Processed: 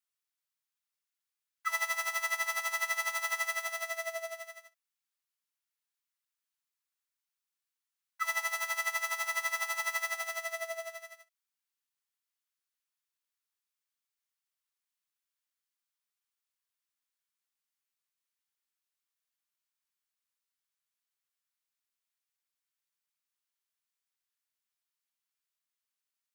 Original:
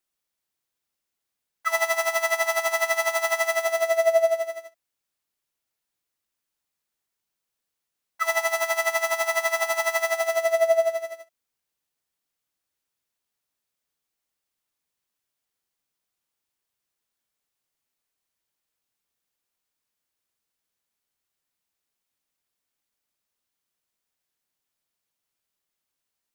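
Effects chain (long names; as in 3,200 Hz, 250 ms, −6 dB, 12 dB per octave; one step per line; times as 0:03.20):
high-pass filter 990 Hz 24 dB per octave
level −7 dB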